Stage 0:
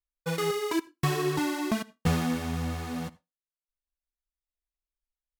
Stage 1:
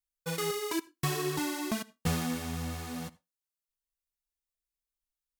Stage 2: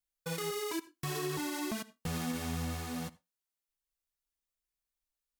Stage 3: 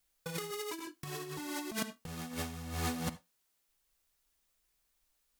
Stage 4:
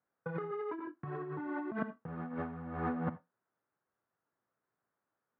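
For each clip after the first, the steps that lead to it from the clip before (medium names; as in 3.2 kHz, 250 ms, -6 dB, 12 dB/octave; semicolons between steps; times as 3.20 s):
treble shelf 4.3 kHz +9 dB; trim -5 dB
peak limiter -26.5 dBFS, peak gain reduction 9 dB
compressor with a negative ratio -42 dBFS, ratio -0.5; trim +5 dB
elliptic band-pass 110–1500 Hz, stop band 60 dB; trim +3 dB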